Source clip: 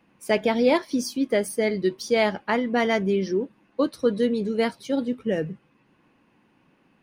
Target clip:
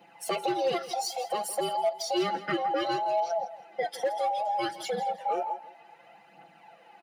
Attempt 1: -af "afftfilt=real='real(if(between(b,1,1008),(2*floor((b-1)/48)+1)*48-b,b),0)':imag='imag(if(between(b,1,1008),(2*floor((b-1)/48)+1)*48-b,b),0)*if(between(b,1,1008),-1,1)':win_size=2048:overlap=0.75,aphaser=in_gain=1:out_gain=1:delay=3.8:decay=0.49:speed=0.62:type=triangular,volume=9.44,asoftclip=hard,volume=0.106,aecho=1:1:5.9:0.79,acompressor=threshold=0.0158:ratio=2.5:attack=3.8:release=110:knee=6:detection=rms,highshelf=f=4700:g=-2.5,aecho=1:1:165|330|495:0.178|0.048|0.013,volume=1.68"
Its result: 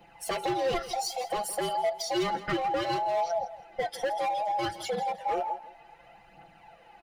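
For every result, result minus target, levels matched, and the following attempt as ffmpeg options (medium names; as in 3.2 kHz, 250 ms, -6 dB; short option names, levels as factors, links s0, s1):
overload inside the chain: distortion +11 dB; 125 Hz band +4.5 dB
-af "afftfilt=real='real(if(between(b,1,1008),(2*floor((b-1)/48)+1)*48-b,b),0)':imag='imag(if(between(b,1,1008),(2*floor((b-1)/48)+1)*48-b,b),0)*if(between(b,1,1008),-1,1)':win_size=2048:overlap=0.75,aphaser=in_gain=1:out_gain=1:delay=3.8:decay=0.49:speed=0.62:type=triangular,volume=4.22,asoftclip=hard,volume=0.237,aecho=1:1:5.9:0.79,acompressor=threshold=0.0158:ratio=2.5:attack=3.8:release=110:knee=6:detection=rms,highshelf=f=4700:g=-2.5,aecho=1:1:165|330|495:0.178|0.048|0.013,volume=1.68"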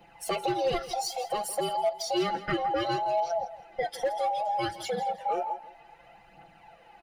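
125 Hz band +5.5 dB
-af "afftfilt=real='real(if(between(b,1,1008),(2*floor((b-1)/48)+1)*48-b,b),0)':imag='imag(if(between(b,1,1008),(2*floor((b-1)/48)+1)*48-b,b),0)*if(between(b,1,1008),-1,1)':win_size=2048:overlap=0.75,aphaser=in_gain=1:out_gain=1:delay=3.8:decay=0.49:speed=0.62:type=triangular,volume=4.22,asoftclip=hard,volume=0.237,aecho=1:1:5.9:0.79,acompressor=threshold=0.0158:ratio=2.5:attack=3.8:release=110:knee=6:detection=rms,highpass=f=170:w=0.5412,highpass=f=170:w=1.3066,highshelf=f=4700:g=-2.5,aecho=1:1:165|330|495:0.178|0.048|0.013,volume=1.68"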